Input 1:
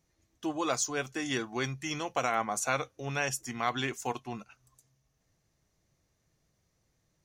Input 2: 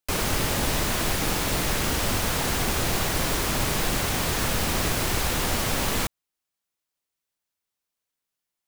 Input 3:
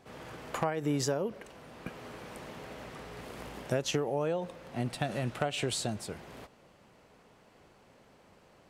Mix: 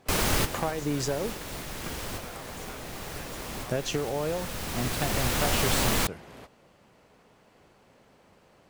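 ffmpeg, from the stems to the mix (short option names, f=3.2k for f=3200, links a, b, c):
-filter_complex "[0:a]volume=-18.5dB,asplit=2[a][b];[1:a]volume=0dB[c];[2:a]acontrast=38,volume=-4.5dB[d];[b]apad=whole_len=382350[e];[c][e]sidechaincompress=threshold=-57dB:ratio=10:attack=9:release=1400[f];[a][f][d]amix=inputs=3:normalize=0"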